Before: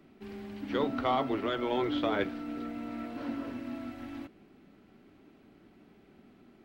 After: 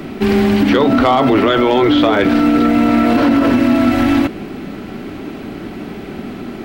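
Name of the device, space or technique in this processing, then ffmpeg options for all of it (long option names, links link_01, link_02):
loud club master: -af "acompressor=threshold=-33dB:ratio=2,asoftclip=type=hard:threshold=-25dB,alimiter=level_in=34.5dB:limit=-1dB:release=50:level=0:latency=1,volume=-3.5dB"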